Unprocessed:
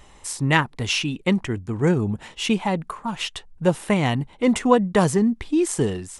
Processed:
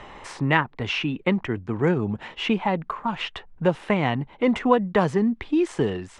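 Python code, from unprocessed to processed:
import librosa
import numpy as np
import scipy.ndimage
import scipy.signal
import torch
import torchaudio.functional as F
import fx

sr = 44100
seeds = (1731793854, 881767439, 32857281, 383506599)

y = scipy.signal.sosfilt(scipy.signal.butter(2, 2600.0, 'lowpass', fs=sr, output='sos'), x)
y = fx.low_shelf(y, sr, hz=280.0, db=-6.0)
y = fx.band_squash(y, sr, depth_pct=40)
y = y * librosa.db_to_amplitude(1.0)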